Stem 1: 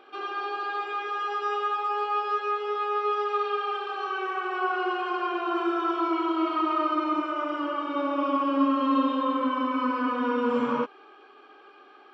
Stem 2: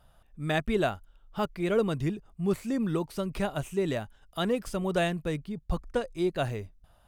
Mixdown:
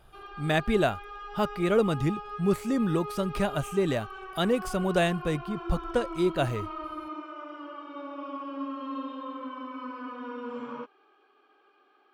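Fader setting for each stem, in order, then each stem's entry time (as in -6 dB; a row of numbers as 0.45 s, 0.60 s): -12.0 dB, +2.5 dB; 0.00 s, 0.00 s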